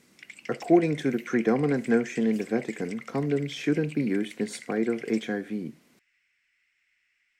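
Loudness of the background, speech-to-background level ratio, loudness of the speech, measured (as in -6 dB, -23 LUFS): -44.5 LUFS, 17.0 dB, -27.5 LUFS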